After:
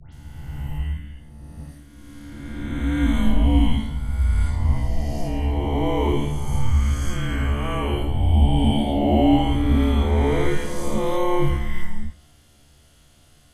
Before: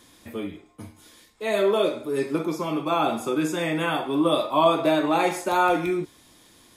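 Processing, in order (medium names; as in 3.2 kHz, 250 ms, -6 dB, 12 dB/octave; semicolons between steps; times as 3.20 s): reverse spectral sustain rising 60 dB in 1.19 s; peaking EQ 380 Hz +13 dB 1.4 oct; band-stop 540 Hz, Q 16; granular stretch 2×, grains 55 ms; de-hum 63.33 Hz, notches 12; phase dispersion highs, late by 131 ms, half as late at 2.5 kHz; frequency shift -370 Hz; trim -5 dB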